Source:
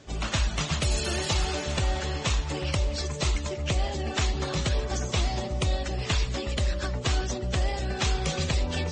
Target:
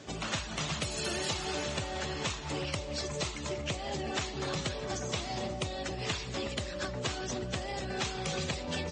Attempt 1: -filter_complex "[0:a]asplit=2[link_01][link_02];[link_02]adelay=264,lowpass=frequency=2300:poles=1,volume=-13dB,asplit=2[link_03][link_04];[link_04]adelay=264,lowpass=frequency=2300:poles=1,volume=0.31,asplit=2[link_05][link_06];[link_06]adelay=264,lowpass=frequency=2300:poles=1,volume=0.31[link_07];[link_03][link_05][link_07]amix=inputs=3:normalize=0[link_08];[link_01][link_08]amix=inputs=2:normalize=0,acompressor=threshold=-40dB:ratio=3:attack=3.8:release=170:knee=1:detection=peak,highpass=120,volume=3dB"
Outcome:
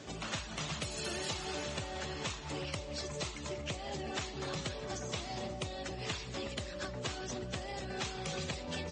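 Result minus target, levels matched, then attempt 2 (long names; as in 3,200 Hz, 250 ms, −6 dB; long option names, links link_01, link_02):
downward compressor: peak gain reduction +4.5 dB
-filter_complex "[0:a]asplit=2[link_01][link_02];[link_02]adelay=264,lowpass=frequency=2300:poles=1,volume=-13dB,asplit=2[link_03][link_04];[link_04]adelay=264,lowpass=frequency=2300:poles=1,volume=0.31,asplit=2[link_05][link_06];[link_06]adelay=264,lowpass=frequency=2300:poles=1,volume=0.31[link_07];[link_03][link_05][link_07]amix=inputs=3:normalize=0[link_08];[link_01][link_08]amix=inputs=2:normalize=0,acompressor=threshold=-33.5dB:ratio=3:attack=3.8:release=170:knee=1:detection=peak,highpass=120,volume=3dB"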